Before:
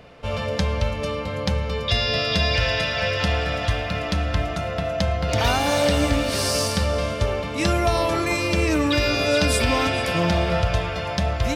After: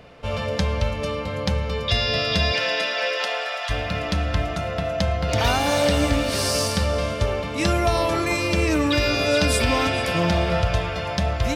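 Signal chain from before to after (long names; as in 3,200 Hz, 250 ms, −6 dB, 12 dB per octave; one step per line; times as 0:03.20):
0:02.51–0:03.69: high-pass filter 170 Hz → 720 Hz 24 dB per octave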